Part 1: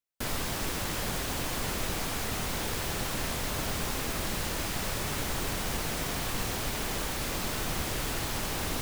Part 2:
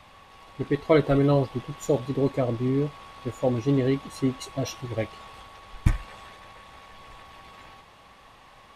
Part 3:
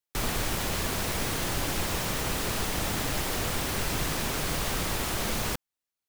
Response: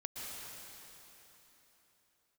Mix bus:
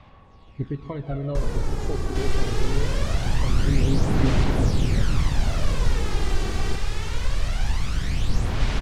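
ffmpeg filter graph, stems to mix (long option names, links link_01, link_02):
-filter_complex "[0:a]equalizer=frequency=310:width=0.39:gain=-8,adelay=1950,volume=-0.5dB[link_01];[1:a]acompressor=threshold=-24dB:ratio=3,volume=-11dB,asplit=2[link_02][link_03];[link_03]volume=-5.5dB[link_04];[2:a]equalizer=frequency=2900:width=0.93:gain=-8.5,adelay=1200,volume=-1.5dB[link_05];[link_02][link_05]amix=inputs=2:normalize=0,acompressor=threshold=-38dB:ratio=1.5,volume=0dB[link_06];[3:a]atrim=start_sample=2205[link_07];[link_04][link_07]afir=irnorm=-1:irlink=0[link_08];[link_01][link_06][link_08]amix=inputs=3:normalize=0,lowpass=5700,lowshelf=frequency=340:gain=11.5,aphaser=in_gain=1:out_gain=1:delay=2.6:decay=0.52:speed=0.23:type=sinusoidal"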